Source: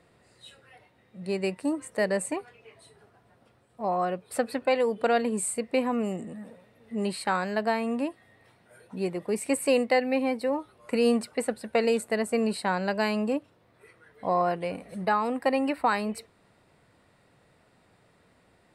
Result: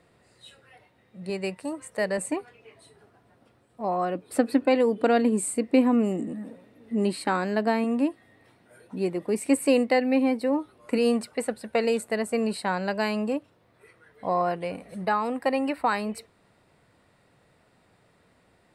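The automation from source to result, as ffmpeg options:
ffmpeg -i in.wav -af "asetnsamples=nb_out_samples=441:pad=0,asendcmd='1.3 equalizer g -6;2.18 equalizer g 4.5;4.15 equalizer g 13.5;7.84 equalizer g 7;10.98 equalizer g 0',equalizer=frequency=290:width_type=o:width=0.67:gain=0.5" out.wav

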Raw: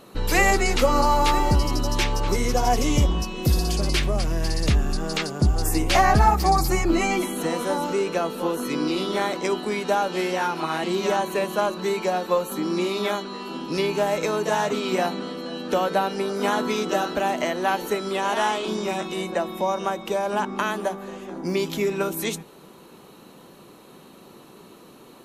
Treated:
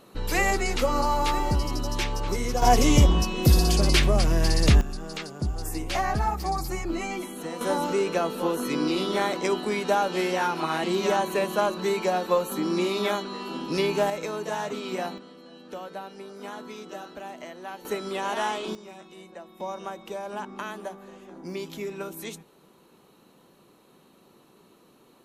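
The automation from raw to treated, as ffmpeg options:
ffmpeg -i in.wav -af "asetnsamples=nb_out_samples=441:pad=0,asendcmd='2.62 volume volume 2.5dB;4.81 volume volume -9dB;7.61 volume volume -1dB;14.1 volume volume -7.5dB;15.18 volume volume -15.5dB;17.85 volume volume -5dB;18.75 volume volume -18dB;19.6 volume volume -10dB',volume=-5dB" out.wav

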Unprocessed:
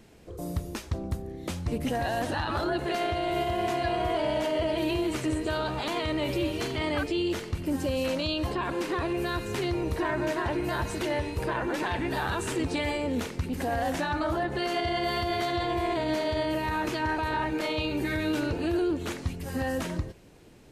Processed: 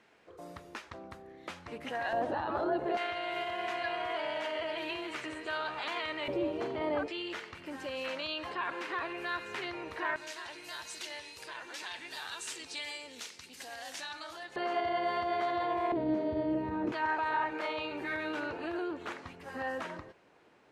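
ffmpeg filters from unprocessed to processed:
ffmpeg -i in.wav -af "asetnsamples=nb_out_samples=441:pad=0,asendcmd='2.13 bandpass f 600;2.97 bandpass f 1800;6.28 bandpass f 630;7.08 bandpass f 1700;10.16 bandpass f 5300;14.56 bandpass f 930;15.92 bandpass f 300;16.92 bandpass f 1200',bandpass=frequency=1500:width_type=q:width=0.97:csg=0" out.wav

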